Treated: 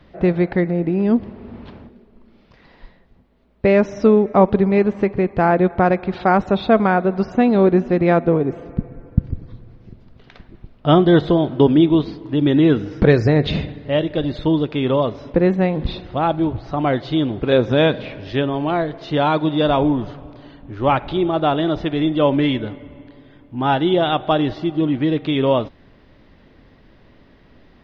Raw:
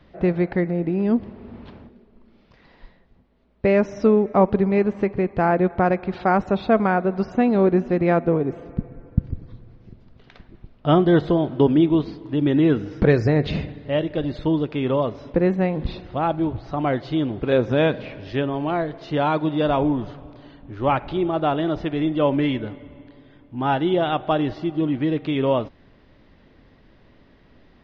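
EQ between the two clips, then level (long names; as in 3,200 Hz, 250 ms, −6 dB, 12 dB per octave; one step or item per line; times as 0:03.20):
dynamic equaliser 3,600 Hz, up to +6 dB, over −52 dBFS, Q 4.5
+3.5 dB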